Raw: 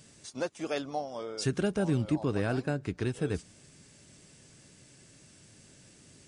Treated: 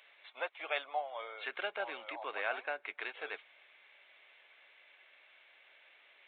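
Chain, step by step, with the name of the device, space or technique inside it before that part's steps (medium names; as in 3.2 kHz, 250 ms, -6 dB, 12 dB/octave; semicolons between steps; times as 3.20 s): musical greeting card (resampled via 8 kHz; high-pass 670 Hz 24 dB/octave; peaking EQ 2.2 kHz +9 dB 0.28 oct); trim +1 dB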